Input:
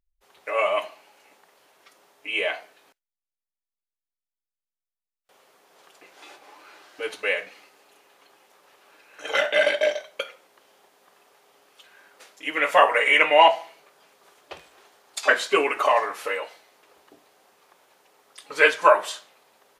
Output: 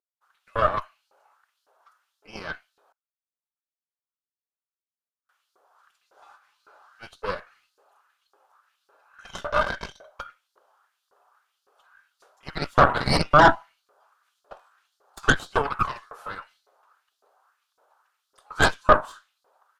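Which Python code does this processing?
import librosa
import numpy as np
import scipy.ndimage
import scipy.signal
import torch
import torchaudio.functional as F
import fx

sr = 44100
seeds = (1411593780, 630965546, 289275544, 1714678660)

y = fx.filter_lfo_highpass(x, sr, shape='saw_up', hz=1.8, low_hz=390.0, high_hz=4900.0, q=2.3)
y = fx.cheby_harmonics(y, sr, harmonics=(6,), levels_db=(-6,), full_scale_db=2.5)
y = fx.high_shelf_res(y, sr, hz=1700.0, db=-6.5, q=3.0)
y = y * 10.0 ** (-9.0 / 20.0)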